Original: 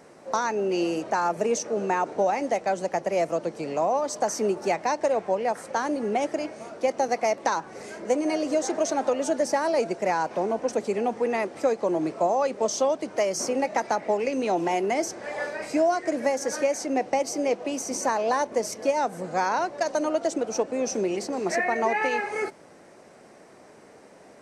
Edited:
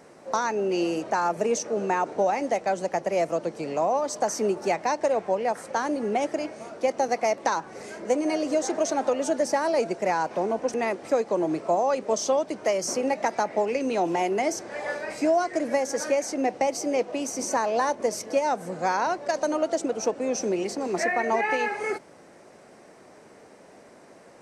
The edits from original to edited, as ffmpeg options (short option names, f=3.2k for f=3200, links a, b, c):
-filter_complex "[0:a]asplit=2[a][b];[a]atrim=end=10.742[c];[b]atrim=start=11.258[d];[c][d]acrossfade=d=0.004:c1=hsin:c2=hsin"